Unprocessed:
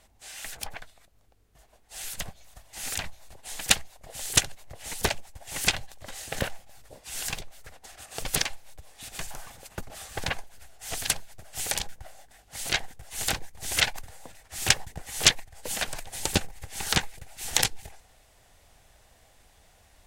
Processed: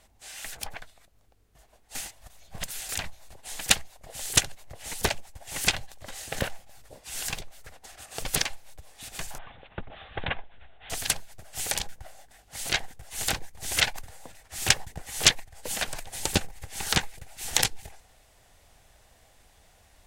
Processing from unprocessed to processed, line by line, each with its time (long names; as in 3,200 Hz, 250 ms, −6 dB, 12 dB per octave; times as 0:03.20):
0:01.95–0:02.89: reverse
0:09.38–0:10.90: Butterworth low-pass 3,700 Hz 96 dB per octave